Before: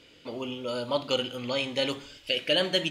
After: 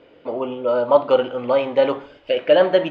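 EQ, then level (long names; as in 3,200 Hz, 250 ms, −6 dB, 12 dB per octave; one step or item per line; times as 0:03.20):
dynamic equaliser 1,200 Hz, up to +5 dB, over −42 dBFS, Q 0.89
Bessel low-pass filter 1,900 Hz, order 2
parametric band 640 Hz +14.5 dB 2.5 octaves
−1.0 dB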